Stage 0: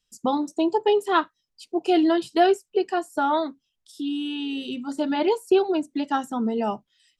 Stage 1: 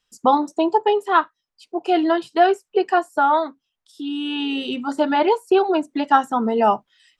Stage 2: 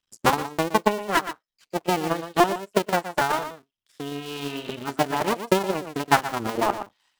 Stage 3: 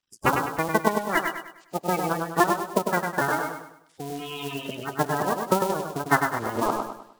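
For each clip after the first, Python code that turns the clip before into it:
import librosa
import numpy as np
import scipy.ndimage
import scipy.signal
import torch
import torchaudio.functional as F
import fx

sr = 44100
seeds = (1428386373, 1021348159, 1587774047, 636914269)

y1 = fx.peak_eq(x, sr, hz=1100.0, db=12.5, octaves=2.8)
y1 = fx.rider(y1, sr, range_db=4, speed_s=0.5)
y1 = y1 * 10.0 ** (-3.0 / 20.0)
y2 = fx.cycle_switch(y1, sr, every=2, mode='muted')
y2 = y2 + 10.0 ** (-7.0 / 20.0) * np.pad(y2, (int(119 * sr / 1000.0), 0))[:len(y2)]
y2 = fx.transient(y2, sr, attack_db=8, sustain_db=-3)
y2 = y2 * 10.0 ** (-6.5 / 20.0)
y3 = fx.spec_quant(y2, sr, step_db=30)
y3 = fx.echo_feedback(y3, sr, ms=101, feedback_pct=39, wet_db=-5.5)
y3 = y3 * 10.0 ** (-1.5 / 20.0)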